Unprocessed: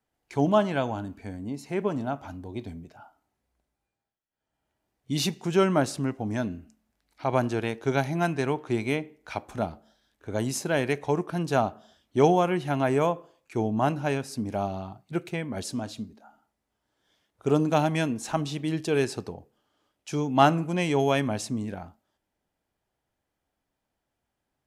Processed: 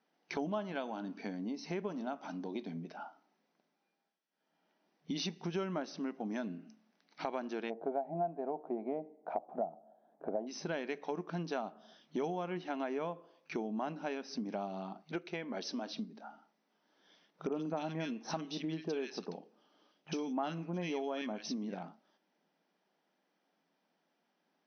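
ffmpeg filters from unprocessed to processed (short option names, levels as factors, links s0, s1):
-filter_complex "[0:a]asettb=1/sr,asplit=3[s0][s1][s2];[s0]atrim=end=0.754[s3];[s1]atrim=start=0.75:end=2.62,asetpts=PTS-STARTPTS,afade=t=in:d=0.004:c=qsin,afade=t=out:st=1.866:d=0.004:c=qsin,equalizer=f=5600:t=o:w=1.2:g=5[s4];[s2]atrim=start=2.616[s5];[s3][s4]acrossfade=d=0.004:c1=hsin:c2=qsin[s6];[s6][s5]acrossfade=d=0.004:c1=qsin:c2=hsin,asplit=3[s7][s8][s9];[s7]afade=t=out:st=7.69:d=0.02[s10];[s8]lowpass=f=700:t=q:w=5.8,afade=t=in:st=7.69:d=0.02,afade=t=out:st=10.46:d=0.02[s11];[s9]afade=t=in:st=10.46:d=0.02[s12];[s10][s11][s12]amix=inputs=3:normalize=0,asettb=1/sr,asplit=3[s13][s14][s15];[s13]atrim=end=15.024[s16];[s14]atrim=start=15.02:end=15.94,asetpts=PTS-STARTPTS,afade=t=in:d=0.004:c=qsin,afade=t=out:st=0.916:d=0.004:c=qsin,highpass=260[s17];[s15]atrim=start=15.936[s18];[s16][s17]acrossfade=d=0.004:c1=hsin:c2=qsin[s19];[s19][s18]acrossfade=d=0.004:c1=qsin:c2=hsin,asettb=1/sr,asplit=3[s20][s21][s22];[s20]atrim=end=17.474[s23];[s21]atrim=start=17.47:end=21.83,asetpts=PTS-STARTPTS,afade=t=in:d=0.004:c=qsin,afade=t=out:st=4.356:d=0.004:c=qsin,acrossover=split=1600[s24][s25];[s25]adelay=50[s26];[s24][s26]amix=inputs=2:normalize=0,atrim=end_sample=192276[s27];[s22]atrim=start=21.826[s28];[s23][s27]acrossfade=d=0.004:c1=hsin:c2=qsin[s29];[s29][s28]acrossfade=d=0.004:c1=qsin:c2=hsin,afftfilt=real='re*between(b*sr/4096,160,6200)':imag='im*between(b*sr/4096,160,6200)':win_size=4096:overlap=0.75,acompressor=threshold=0.00794:ratio=4,volume=1.58"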